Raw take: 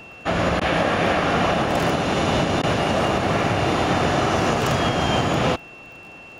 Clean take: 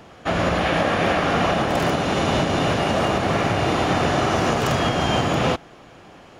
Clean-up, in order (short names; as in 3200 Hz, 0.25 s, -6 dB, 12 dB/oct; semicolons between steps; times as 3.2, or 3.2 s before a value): de-click; notch 2700 Hz, Q 30; interpolate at 0.6/2.62, 12 ms